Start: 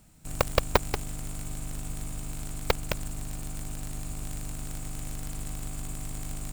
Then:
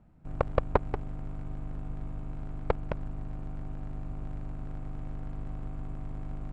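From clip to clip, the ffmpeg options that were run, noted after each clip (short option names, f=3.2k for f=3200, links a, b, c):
-af "lowpass=1.2k,volume=-1dB"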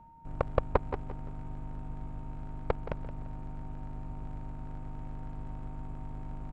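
-af "areverse,acompressor=mode=upward:threshold=-38dB:ratio=2.5,areverse,aeval=exprs='val(0)+0.00282*sin(2*PI*920*n/s)':c=same,aecho=1:1:172|344|516:0.224|0.0761|0.0259,volume=-2.5dB"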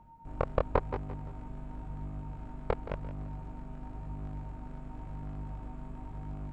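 -af "flanger=delay=20:depth=4.7:speed=0.94,volume=3dB"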